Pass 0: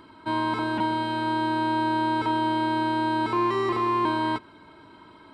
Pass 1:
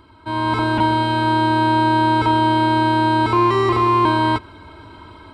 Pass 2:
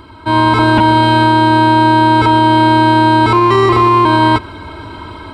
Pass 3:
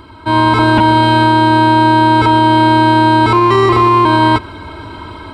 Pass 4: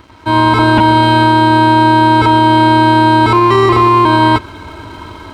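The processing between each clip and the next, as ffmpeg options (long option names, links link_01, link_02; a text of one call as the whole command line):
ffmpeg -i in.wav -af "lowshelf=frequency=120:width_type=q:width=1.5:gain=10,bandreject=frequency=1800:width=10,dynaudnorm=framelen=280:gausssize=3:maxgain=9dB" out.wav
ffmpeg -i in.wav -af "alimiter=level_in=12.5dB:limit=-1dB:release=50:level=0:latency=1,volume=-1dB" out.wav
ffmpeg -i in.wav -af anull out.wav
ffmpeg -i in.wav -af "aeval=exprs='sgn(val(0))*max(abs(val(0))-0.00891,0)':channel_layout=same,volume=1dB" out.wav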